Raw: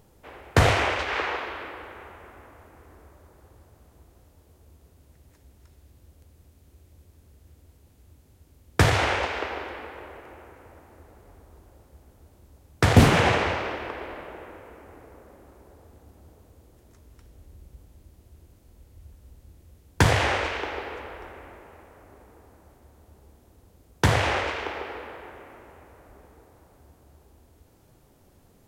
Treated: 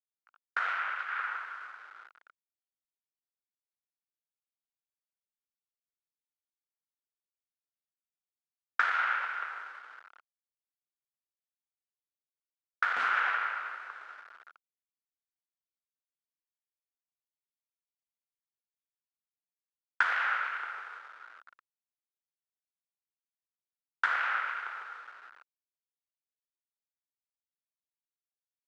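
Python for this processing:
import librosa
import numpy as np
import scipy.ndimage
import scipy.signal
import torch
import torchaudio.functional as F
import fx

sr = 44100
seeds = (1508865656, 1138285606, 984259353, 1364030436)

y = fx.delta_hold(x, sr, step_db=-34.5)
y = fx.ladder_bandpass(y, sr, hz=1500.0, resonance_pct=75)
y = fx.rider(y, sr, range_db=4, speed_s=2.0)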